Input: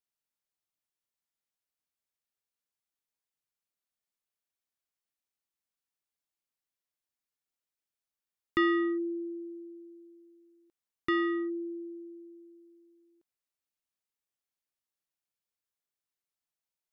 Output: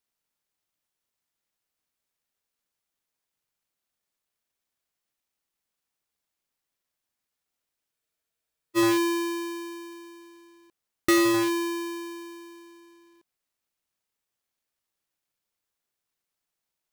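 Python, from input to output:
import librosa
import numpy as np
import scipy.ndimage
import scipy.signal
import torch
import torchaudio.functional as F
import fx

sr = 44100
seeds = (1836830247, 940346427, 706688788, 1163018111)

y = fx.halfwave_hold(x, sr)
y = fx.spec_freeze(y, sr, seeds[0], at_s=7.95, hold_s=0.82)
y = y * librosa.db_to_amplitude(5.5)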